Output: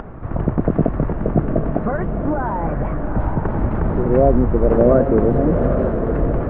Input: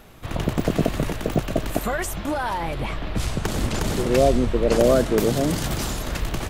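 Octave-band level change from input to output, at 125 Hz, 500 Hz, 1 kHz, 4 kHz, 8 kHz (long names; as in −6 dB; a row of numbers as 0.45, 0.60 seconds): +6.5 dB, +4.5 dB, +3.0 dB, below −25 dB, below −40 dB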